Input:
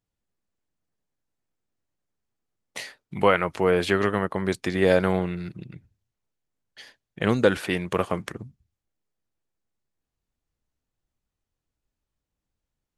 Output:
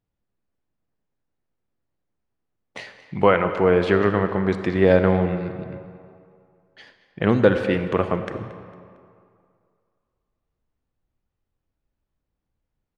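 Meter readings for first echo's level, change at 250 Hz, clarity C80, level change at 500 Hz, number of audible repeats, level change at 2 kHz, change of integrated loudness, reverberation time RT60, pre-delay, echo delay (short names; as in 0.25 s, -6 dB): -17.5 dB, +4.5 dB, 9.5 dB, +4.0 dB, 3, +1.0 dB, +3.5 dB, 2.3 s, 34 ms, 0.227 s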